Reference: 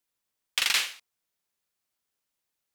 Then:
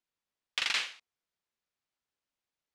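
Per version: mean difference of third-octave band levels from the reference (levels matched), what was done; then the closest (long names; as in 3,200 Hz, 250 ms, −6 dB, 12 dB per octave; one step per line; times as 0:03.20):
4.0 dB: high-frequency loss of the air 88 metres
level −3.5 dB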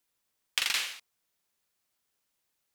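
2.0 dB: downward compressor 6 to 1, threshold −29 dBFS, peak gain reduction 9 dB
level +3.5 dB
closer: second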